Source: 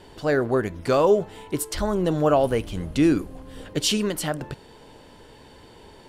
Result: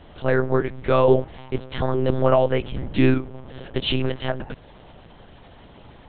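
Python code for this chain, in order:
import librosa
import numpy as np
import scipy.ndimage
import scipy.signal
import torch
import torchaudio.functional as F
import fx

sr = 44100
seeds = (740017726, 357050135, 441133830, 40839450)

y = fx.lpc_monotone(x, sr, seeds[0], pitch_hz=130.0, order=8)
y = y * 10.0 ** (2.0 / 20.0)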